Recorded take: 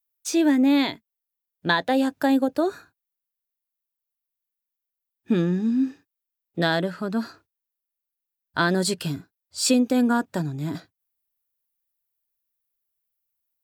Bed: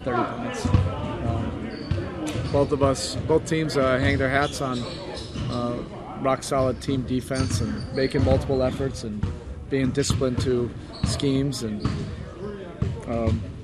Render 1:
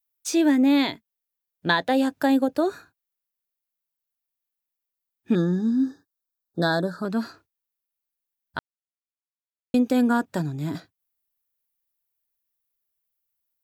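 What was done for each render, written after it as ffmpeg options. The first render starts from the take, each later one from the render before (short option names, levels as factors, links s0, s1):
-filter_complex "[0:a]asettb=1/sr,asplit=3[s0][s1][s2];[s0]atrim=end=5.354[s3];[s1]atrim=start=5.35:end=7.05,asetpts=PTS-STARTPTS,afade=t=in:d=0.004:c=qsin,afade=t=out:st=1.696:d=0.004:c=qsin,asuperstop=centerf=2500:order=20:qfactor=1.4[s4];[s2]atrim=start=7.046[s5];[s3][s4]acrossfade=d=0.004:c1=hsin:c2=qsin[s6];[s6][s5]acrossfade=d=0.004:c1=qsin:c2=hsin,asplit=3[s7][s8][s9];[s7]atrim=end=8.59,asetpts=PTS-STARTPTS,afade=t=out:st=8.586:d=0.004:c=hsin[s10];[s8]atrim=start=8.59:end=9.74,asetpts=PTS-STARTPTS,volume=0[s11];[s9]atrim=start=9.74,asetpts=PTS-STARTPTS,afade=t=in:d=0.004:c=hsin[s12];[s10][s11][s12]concat=n=3:v=0:a=1"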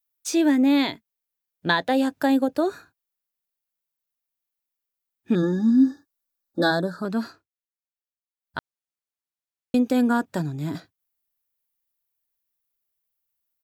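-filter_complex "[0:a]asplit=3[s0][s1][s2];[s0]afade=t=out:st=5.42:d=0.02[s3];[s1]aecho=1:1:3.5:1,afade=t=in:st=5.42:d=0.02,afade=t=out:st=6.7:d=0.02[s4];[s2]afade=t=in:st=6.7:d=0.02[s5];[s3][s4][s5]amix=inputs=3:normalize=0,asplit=3[s6][s7][s8];[s6]atrim=end=7.45,asetpts=PTS-STARTPTS,afade=t=out:st=7.26:d=0.19:silence=0.158489[s9];[s7]atrim=start=7.45:end=8.39,asetpts=PTS-STARTPTS,volume=0.158[s10];[s8]atrim=start=8.39,asetpts=PTS-STARTPTS,afade=t=in:d=0.19:silence=0.158489[s11];[s9][s10][s11]concat=n=3:v=0:a=1"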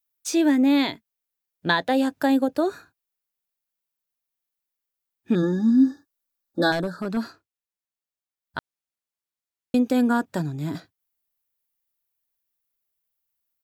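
-filter_complex "[0:a]asettb=1/sr,asplit=3[s0][s1][s2];[s0]atrim=end=6.724[s3];[s1]atrim=start=6.72:end=7.17,asetpts=PTS-STARTPTS,afade=t=in:d=0.004:c=qsin,afade=t=out:st=0.446:d=0.004:c=qsin,asoftclip=type=hard:threshold=0.1[s4];[s2]atrim=start=7.166[s5];[s3][s4]acrossfade=d=0.004:c1=hsin:c2=qsin[s6];[s6][s5]acrossfade=d=0.004:c1=qsin:c2=hsin"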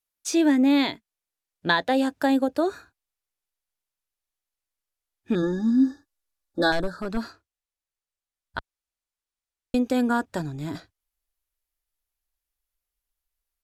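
-af "asubboost=boost=9.5:cutoff=50,lowpass=12000"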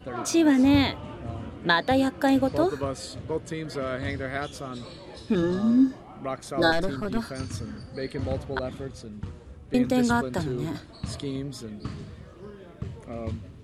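-filter_complex "[1:a]volume=0.335[s0];[0:a][s0]amix=inputs=2:normalize=0"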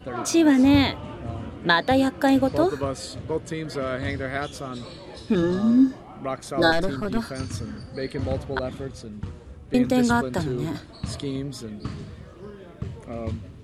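-af "volume=1.33"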